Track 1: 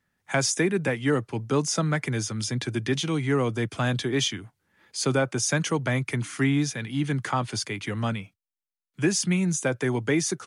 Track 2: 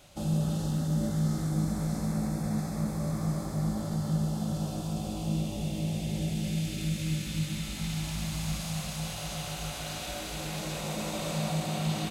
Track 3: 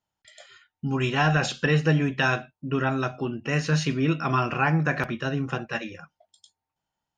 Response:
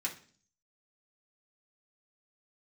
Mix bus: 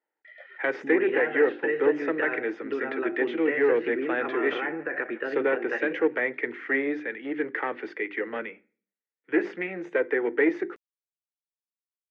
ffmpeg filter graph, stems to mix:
-filter_complex "[0:a]bandreject=f=50:t=h:w=6,bandreject=f=100:t=h:w=6,bandreject=f=150:t=h:w=6,bandreject=f=200:t=h:w=6,bandreject=f=250:t=h:w=6,bandreject=f=300:t=h:w=6,bandreject=f=350:t=h:w=6,bandreject=f=400:t=h:w=6,aeval=exprs='clip(val(0),-1,0.0562)':c=same,adelay=300,volume=-0.5dB,asplit=2[a][b];[b]volume=-15dB[c];[2:a]deesser=0.85,alimiter=limit=-15.5dB:level=0:latency=1:release=111,acompressor=threshold=-27dB:ratio=6,volume=0.5dB,asplit=2[d][e];[e]volume=-19dB[f];[3:a]atrim=start_sample=2205[g];[c][g]afir=irnorm=-1:irlink=0[h];[f]aecho=0:1:148|296|444|592|740|888|1036:1|0.51|0.26|0.133|0.0677|0.0345|0.0176[i];[a][d][h][i]amix=inputs=4:normalize=0,highpass=f=310:w=0.5412,highpass=f=310:w=1.3066,equalizer=f=330:t=q:w=4:g=6,equalizer=f=470:t=q:w=4:g=9,equalizer=f=690:t=q:w=4:g=-4,equalizer=f=1.1k:t=q:w=4:g=-7,equalizer=f=1.9k:t=q:w=4:g=9,lowpass=f=2.2k:w=0.5412,lowpass=f=2.2k:w=1.3066"

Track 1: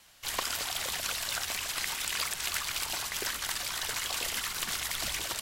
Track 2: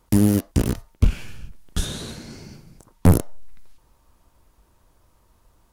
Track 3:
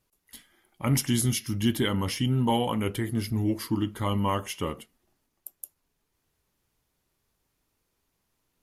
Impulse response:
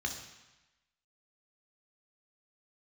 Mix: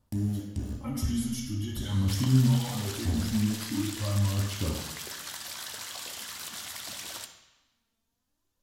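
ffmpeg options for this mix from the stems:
-filter_complex "[0:a]highpass=140,adelay=1850,volume=2dB,asplit=2[a][b];[b]volume=-14dB[c];[1:a]volume=-12.5dB,asplit=2[d][e];[e]volume=-7.5dB[f];[2:a]alimiter=limit=-22dB:level=0:latency=1:release=17,aphaser=in_gain=1:out_gain=1:delay=4.5:decay=0.64:speed=0.44:type=sinusoidal,volume=-6dB,asplit=2[g][h];[h]volume=-3.5dB[i];[a][d]amix=inputs=2:normalize=0,acompressor=threshold=-34dB:ratio=6,volume=0dB[j];[3:a]atrim=start_sample=2205[k];[c][f][i]amix=inputs=3:normalize=0[l];[l][k]afir=irnorm=-1:irlink=0[m];[g][j][m]amix=inputs=3:normalize=0"

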